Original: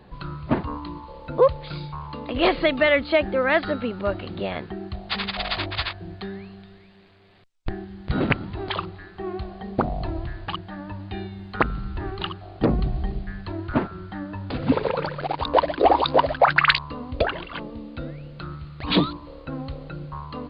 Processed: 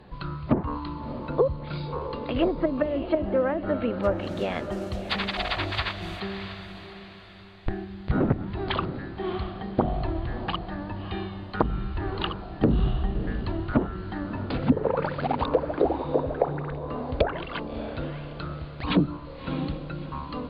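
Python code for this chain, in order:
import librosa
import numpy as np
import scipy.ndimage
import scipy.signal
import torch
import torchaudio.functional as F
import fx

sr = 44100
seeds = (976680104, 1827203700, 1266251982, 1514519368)

y = fx.mod_noise(x, sr, seeds[0], snr_db=17, at=(4.03, 6.2))
y = fx.env_lowpass_down(y, sr, base_hz=350.0, full_db=-15.5)
y = fx.echo_diffused(y, sr, ms=637, feedback_pct=41, wet_db=-10.0)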